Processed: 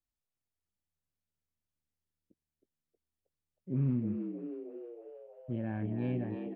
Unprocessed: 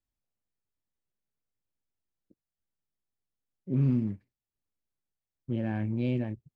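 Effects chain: treble ducked by the level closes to 2300 Hz, closed at -28 dBFS; frequency-shifting echo 0.316 s, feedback 60%, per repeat +76 Hz, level -7.5 dB; gain -5 dB

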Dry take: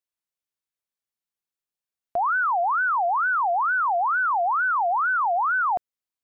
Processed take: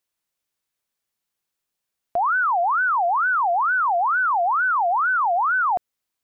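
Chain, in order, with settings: limiter -26 dBFS, peak gain reduction 7 dB; 2.76–5.48 short-mantissa float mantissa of 8-bit; gain +9 dB

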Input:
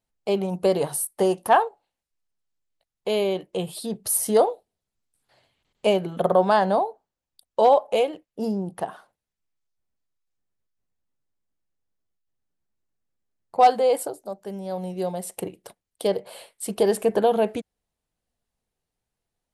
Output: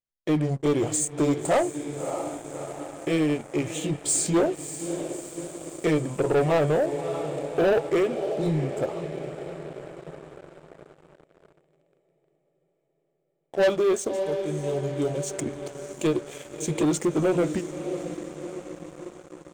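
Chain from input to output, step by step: delay-line pitch shifter -4.5 st; diffused feedback echo 0.608 s, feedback 63%, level -12.5 dB; sample leveller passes 3; gain -8.5 dB

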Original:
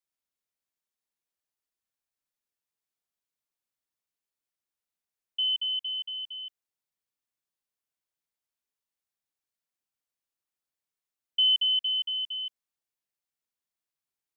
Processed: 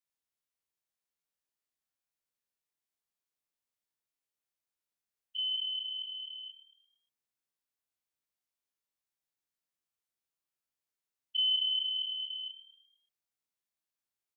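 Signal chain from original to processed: spectral dilation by 60 ms; frequency-shifting echo 0.115 s, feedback 48%, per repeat +38 Hz, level -13.5 dB; gain -6.5 dB

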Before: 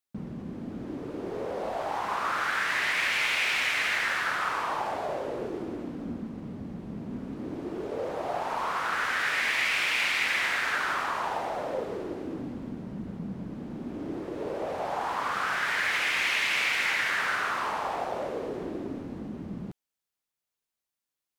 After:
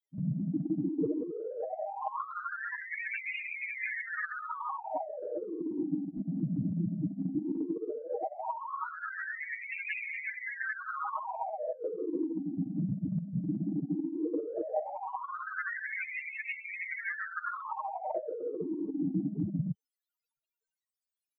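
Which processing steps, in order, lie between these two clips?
loudest bins only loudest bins 4; negative-ratio compressor -42 dBFS, ratio -0.5; comb 6.4 ms, depth 100%; gain +5 dB

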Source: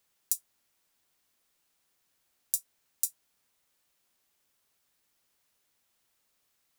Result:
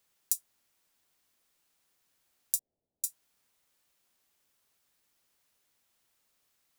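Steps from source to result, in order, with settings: 2.59–3.04 steep low-pass 700 Hz

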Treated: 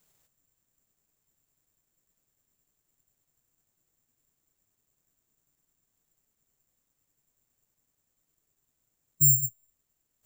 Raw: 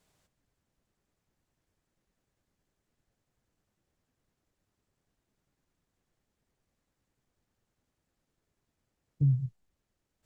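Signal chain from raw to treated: flange 1.8 Hz, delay 6 ms, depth 2.2 ms, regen -64%; careless resampling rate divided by 6×, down none, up zero stuff

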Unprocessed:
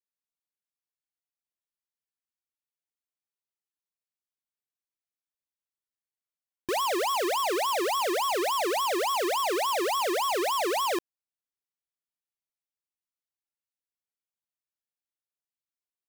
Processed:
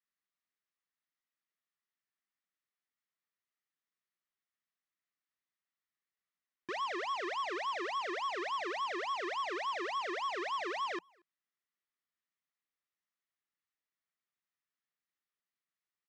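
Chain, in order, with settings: limiter -37.5 dBFS, peak gain reduction 10.5 dB; speaker cabinet 160–5500 Hz, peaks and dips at 180 Hz +5 dB, 510 Hz -6 dB, 860 Hz -4 dB, 1200 Hz +7 dB, 1900 Hz +9 dB, 4600 Hz -3 dB; speakerphone echo 0.23 s, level -27 dB

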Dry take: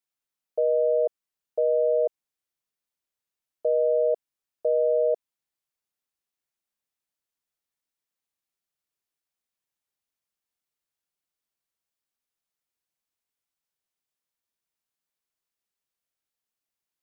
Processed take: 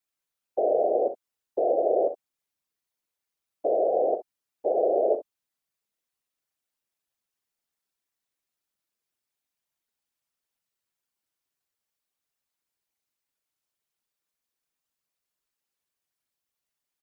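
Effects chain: comb 7 ms; whisperiser; early reflections 41 ms -12.5 dB, 64 ms -13 dB

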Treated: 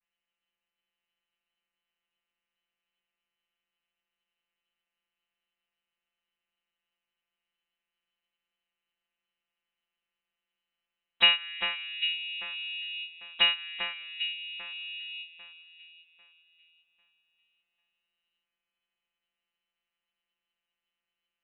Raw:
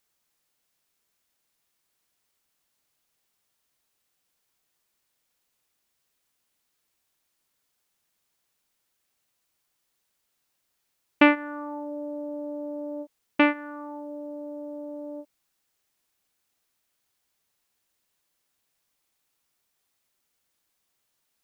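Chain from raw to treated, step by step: vocoder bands 32, saw 167 Hz; inverted band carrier 3200 Hz; on a send: echo with dull and thin repeats by turns 0.398 s, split 2400 Hz, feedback 54%, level -5 dB; on the sum: harmoniser +5 st -15 dB; gain -4 dB

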